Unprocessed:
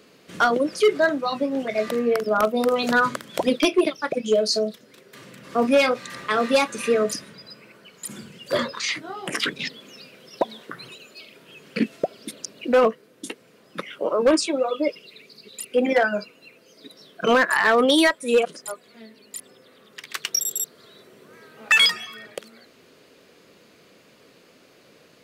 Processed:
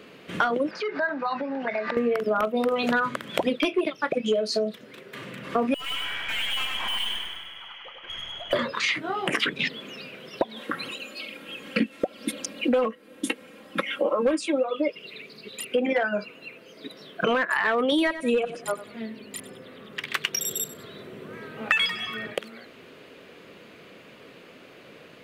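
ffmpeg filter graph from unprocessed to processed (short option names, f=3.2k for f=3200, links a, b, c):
-filter_complex "[0:a]asettb=1/sr,asplit=3[a][b][c];[a]atrim=end=0.714[d];[b]atrim=start=0.71:end=1.97,asetpts=PTS-STARTPTS,afade=t=in:d=0.004:c=qsin,afade=t=out:st=1.256:d=0.004:c=qsin,acompressor=threshold=-29dB:ratio=10:attack=3.2:release=140:knee=1:detection=peak,highpass=220,equalizer=f=330:t=q:w=4:g=-6,equalizer=f=500:t=q:w=4:g=-4,equalizer=f=900:t=q:w=4:g=9,equalizer=f=1.6k:t=q:w=4:g=8,equalizer=f=3.2k:t=q:w=4:g=-9,equalizer=f=4.8k:t=q:w=4:g=4,lowpass=f=5.1k:w=0.5412,lowpass=f=5.1k:w=1.3066[e];[c]atrim=start=1.966[f];[d][e]acrossfade=d=0.004:c1=hsin:c2=qsin[g];[g][f]acrossfade=d=0.004:c1=qsin:c2=hsin,asettb=1/sr,asplit=3[h][i][j];[h]atrim=end=5.744[k];[i]atrim=start=5.74:end=8.53,asetpts=PTS-STARTPTS,afade=t=in:d=0.004:c=qsin,afade=t=out:st=2.786:d=0.004:c=qsin,lowpass=f=3k:t=q:w=0.5098,lowpass=f=3k:t=q:w=0.6013,lowpass=f=3k:t=q:w=0.9,lowpass=f=3k:t=q:w=2.563,afreqshift=-3500,aeval=exprs='(tanh(56.2*val(0)+0.45)-tanh(0.45))/56.2':c=same,aecho=1:1:100|200|300|400|500|600|700:0.631|0.341|0.184|0.0994|0.0537|0.029|0.0156,atrim=end_sample=123039[l];[j]atrim=start=8.526[m];[k][l]acrossfade=d=0.004:c1=hsin:c2=qsin[n];[n][m]acrossfade=d=0.004:c1=qsin:c2=hsin,asettb=1/sr,asplit=3[o][p][q];[o]atrim=end=10.564[r];[p]atrim=start=10.56:end=14.64,asetpts=PTS-STARTPTS,afade=t=in:d=0.004:c=qsin,afade=t=out:st=4.076:d=0.004:c=qsin,equalizer=f=10k:w=0.96:g=5.5,aecho=1:1:3.7:0.72,atrim=end_sample=179928[s];[q]atrim=start=14.636[t];[r][s]acrossfade=d=0.004:c1=hsin:c2=qsin[u];[u][t]acrossfade=d=0.004:c1=qsin:c2=hsin,asettb=1/sr,asplit=3[v][w][x];[v]atrim=end=17.924[y];[w]atrim=start=17.92:end=22.34,asetpts=PTS-STARTPTS,afade=t=in:d=0.004:c=qsin,afade=t=out:st=4.416:d=0.004:c=qsin,lowshelf=f=260:g=9,aecho=1:1:96|192:0.15|0.0374,atrim=end_sample=194922[z];[x]atrim=start=22.336[aa];[y][z]acrossfade=d=0.004:c1=hsin:c2=qsin[ab];[ab][aa]acrossfade=d=0.004:c1=qsin:c2=hsin,highshelf=f=3.9k:t=q:w=1.5:g=-7.5,acompressor=threshold=-27dB:ratio=6,volume=5.5dB"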